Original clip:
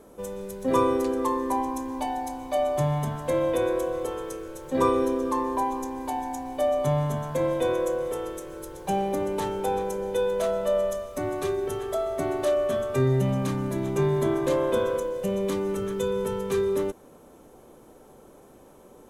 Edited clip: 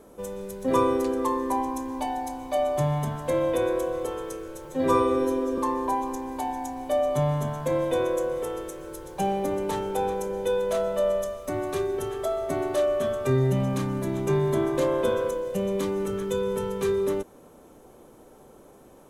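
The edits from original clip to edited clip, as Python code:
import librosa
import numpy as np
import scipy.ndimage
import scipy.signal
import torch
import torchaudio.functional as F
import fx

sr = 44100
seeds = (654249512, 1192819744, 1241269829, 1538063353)

y = fx.edit(x, sr, fx.stretch_span(start_s=4.65, length_s=0.62, factor=1.5), tone=tone)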